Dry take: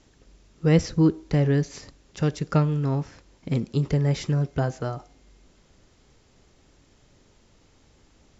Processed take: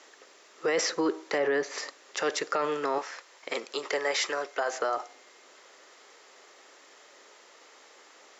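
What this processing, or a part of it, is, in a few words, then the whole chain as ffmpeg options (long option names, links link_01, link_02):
laptop speaker: -filter_complex "[0:a]asettb=1/sr,asplit=3[link_01][link_02][link_03];[link_01]atrim=end=1.384[link_04];[link_02]atrim=start=1.38:end=1.78,asetpts=PTS-STARTPTS,afade=type=in:duration=0.004:curve=qsin,afade=type=out:start_time=0.396:duration=0.004:curve=qsin,highshelf=frequency=3900:gain=-11.5[link_05];[link_03]atrim=start=1.776[link_06];[link_04][link_05]acrossfade=duration=0.004:curve1=hsin:curve2=qsin[link_07];[link_07][link_06]acrossfade=duration=0.004:curve1=qsin:curve2=hsin,asettb=1/sr,asplit=3[link_08][link_09][link_10];[link_08]atrim=end=2.984[link_11];[link_09]atrim=start=2.98:end=4.73,asetpts=PTS-STARTPTS,afade=type=in:duration=0.004:curve=qsin,afade=type=out:start_time=1.746:duration=0.004:curve=qsin,highpass=frequency=660:poles=1[link_12];[link_10]atrim=start=4.726[link_13];[link_11][link_12]acrossfade=duration=0.004:curve1=hsin:curve2=qsin[link_14];[link_14][link_13]acrossfade=duration=0.004:curve1=qsin:curve2=hsin,highpass=frequency=430:width=0.5412,highpass=frequency=430:width=1.3066,equalizer=frequency=1200:width_type=o:width=0.5:gain=5,equalizer=frequency=1900:width_type=o:width=0.38:gain=5.5,alimiter=level_in=2.5dB:limit=-24dB:level=0:latency=1:release=18,volume=-2.5dB,volume=8dB"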